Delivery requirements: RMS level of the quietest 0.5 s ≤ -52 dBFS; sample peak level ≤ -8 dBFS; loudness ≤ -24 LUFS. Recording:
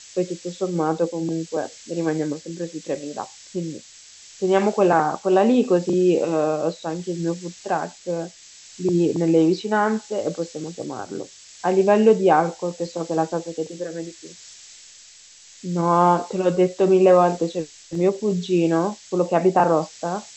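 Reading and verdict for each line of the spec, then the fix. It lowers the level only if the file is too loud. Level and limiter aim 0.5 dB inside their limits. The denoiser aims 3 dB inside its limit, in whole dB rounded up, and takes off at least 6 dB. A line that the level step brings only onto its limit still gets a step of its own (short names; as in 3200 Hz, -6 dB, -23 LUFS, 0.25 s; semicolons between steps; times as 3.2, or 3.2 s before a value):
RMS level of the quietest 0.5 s -47 dBFS: fail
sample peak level -4.0 dBFS: fail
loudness -21.5 LUFS: fail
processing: denoiser 6 dB, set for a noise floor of -47 dBFS; gain -3 dB; limiter -8.5 dBFS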